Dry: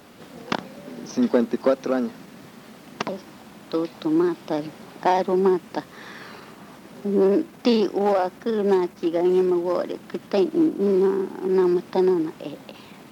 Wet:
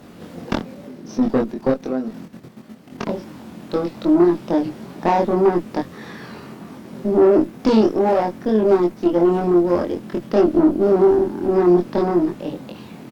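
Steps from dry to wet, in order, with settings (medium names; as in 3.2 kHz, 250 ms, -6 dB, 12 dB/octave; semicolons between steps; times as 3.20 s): bass shelf 460 Hz +10.5 dB; 0.60–3.09 s: level held to a coarse grid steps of 12 dB; valve stage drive 11 dB, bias 0.45; doubling 23 ms -2 dB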